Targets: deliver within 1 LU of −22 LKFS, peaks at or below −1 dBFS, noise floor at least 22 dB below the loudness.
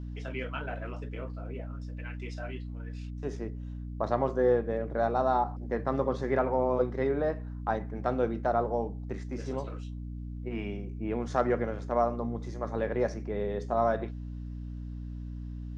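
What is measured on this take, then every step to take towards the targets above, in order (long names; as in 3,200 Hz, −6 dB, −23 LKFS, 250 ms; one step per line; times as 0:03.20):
mains hum 60 Hz; hum harmonics up to 300 Hz; level of the hum −36 dBFS; integrated loudness −32.0 LKFS; sample peak −13.0 dBFS; target loudness −22.0 LKFS
→ hum removal 60 Hz, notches 5
level +10 dB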